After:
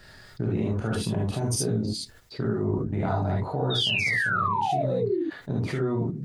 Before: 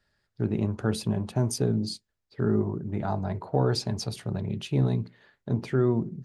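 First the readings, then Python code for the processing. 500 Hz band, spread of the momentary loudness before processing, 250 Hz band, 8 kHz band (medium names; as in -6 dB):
+1.0 dB, 7 LU, -0.5 dB, +4.0 dB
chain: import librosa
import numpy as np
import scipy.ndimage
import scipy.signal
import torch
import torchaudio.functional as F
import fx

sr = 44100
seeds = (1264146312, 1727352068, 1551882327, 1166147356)

y = fx.spec_paint(x, sr, seeds[0], shape='fall', start_s=3.7, length_s=1.52, low_hz=310.0, high_hz=3800.0, level_db=-23.0)
y = fx.level_steps(y, sr, step_db=16)
y = fx.rev_gated(y, sr, seeds[1], gate_ms=90, shape='rising', drr_db=-4.0)
y = fx.env_flatten(y, sr, amount_pct=50)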